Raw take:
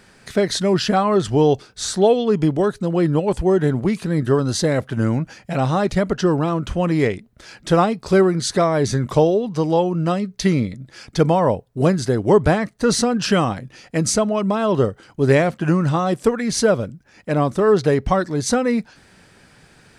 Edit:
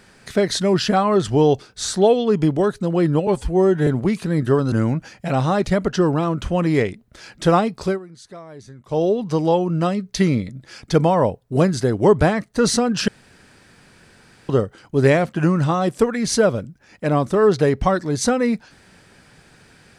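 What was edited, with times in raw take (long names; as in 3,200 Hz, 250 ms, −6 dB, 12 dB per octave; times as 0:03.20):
0:03.27–0:03.67: time-stretch 1.5×
0:04.52–0:04.97: remove
0:08.05–0:09.32: duck −21 dB, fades 0.19 s
0:13.33–0:14.74: fill with room tone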